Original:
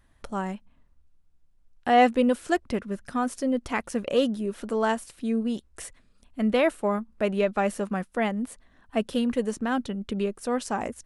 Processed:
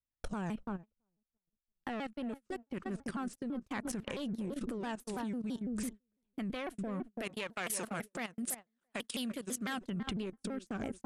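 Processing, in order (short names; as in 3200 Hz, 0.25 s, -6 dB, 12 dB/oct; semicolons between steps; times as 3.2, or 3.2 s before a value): one diode to ground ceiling -20.5 dBFS; 7.07–9.81 tilt +3.5 dB/oct; darkening echo 0.335 s, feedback 34%, low-pass 910 Hz, level -10 dB; compressor 8:1, threshold -36 dBFS, peak gain reduction 20.5 dB; rotary speaker horn 5.5 Hz, later 0.85 Hz, at 1.49; level quantiser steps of 15 dB; dynamic EQ 510 Hz, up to -6 dB, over -59 dBFS, Q 1.4; gate -52 dBFS, range -33 dB; shaped vibrato saw down 6 Hz, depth 250 cents; gain +9.5 dB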